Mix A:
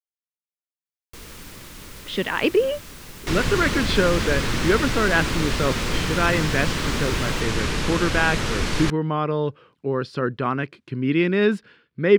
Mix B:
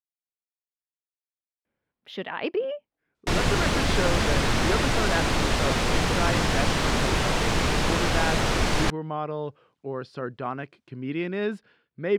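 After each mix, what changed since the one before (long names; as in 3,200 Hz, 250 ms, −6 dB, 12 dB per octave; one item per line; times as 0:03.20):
speech −10.0 dB
first sound: muted
master: add parametric band 720 Hz +8.5 dB 0.69 octaves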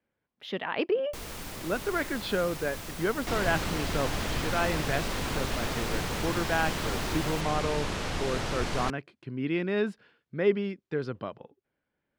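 speech: entry −1.65 s
first sound: unmuted
second sound −8.5 dB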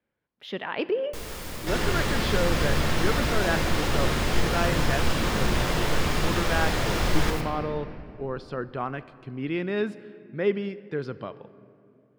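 second sound: entry −1.60 s
reverb: on, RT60 2.7 s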